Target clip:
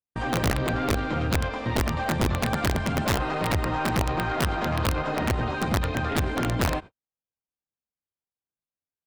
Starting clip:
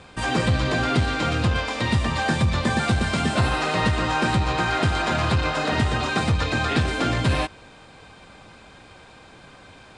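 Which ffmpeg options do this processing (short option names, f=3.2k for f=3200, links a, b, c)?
-af "agate=range=-55dB:threshold=-35dB:ratio=16:detection=peak,lowpass=f=1.1k:p=1,atempo=1.1,aeval=exprs='(tanh(7.94*val(0)+0.25)-tanh(0.25))/7.94':c=same,aeval=exprs='(mod(7.5*val(0)+1,2)-1)/7.5':c=same"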